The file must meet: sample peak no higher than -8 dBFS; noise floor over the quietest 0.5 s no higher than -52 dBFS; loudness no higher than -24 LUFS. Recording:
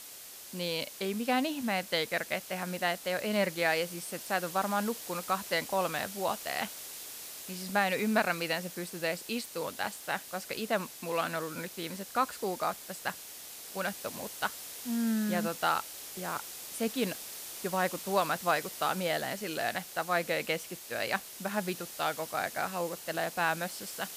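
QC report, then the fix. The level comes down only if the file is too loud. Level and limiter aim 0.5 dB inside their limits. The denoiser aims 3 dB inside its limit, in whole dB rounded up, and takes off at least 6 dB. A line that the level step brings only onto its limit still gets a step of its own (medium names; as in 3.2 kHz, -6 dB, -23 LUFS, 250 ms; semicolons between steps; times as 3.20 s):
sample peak -13.5 dBFS: pass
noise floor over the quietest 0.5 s -48 dBFS: fail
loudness -33.0 LUFS: pass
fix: noise reduction 7 dB, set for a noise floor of -48 dBFS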